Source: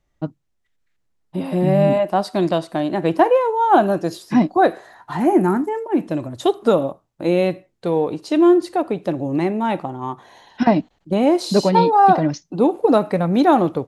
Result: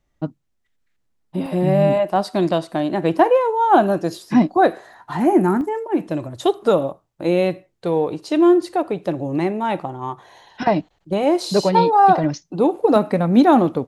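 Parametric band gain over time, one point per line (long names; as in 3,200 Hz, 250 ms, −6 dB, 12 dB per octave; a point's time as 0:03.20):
parametric band 240 Hz 0.31 octaves
+4 dB
from 0:01.46 −7 dB
from 0:02.16 +1 dB
from 0:05.61 −6.5 dB
from 0:10.10 −13 dB
from 0:12.24 −4.5 dB
from 0:12.96 +7 dB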